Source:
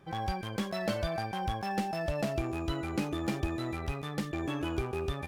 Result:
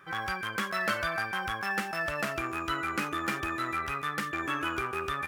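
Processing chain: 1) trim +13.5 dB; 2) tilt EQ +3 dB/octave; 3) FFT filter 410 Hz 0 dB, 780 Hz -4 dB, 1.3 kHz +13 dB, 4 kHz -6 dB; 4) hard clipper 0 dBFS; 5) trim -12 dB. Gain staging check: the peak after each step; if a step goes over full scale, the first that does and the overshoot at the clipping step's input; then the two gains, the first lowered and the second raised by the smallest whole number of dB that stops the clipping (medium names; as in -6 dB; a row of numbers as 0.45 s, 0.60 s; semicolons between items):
-5.0 dBFS, -3.0 dBFS, -3.0 dBFS, -3.0 dBFS, -15.0 dBFS; nothing clips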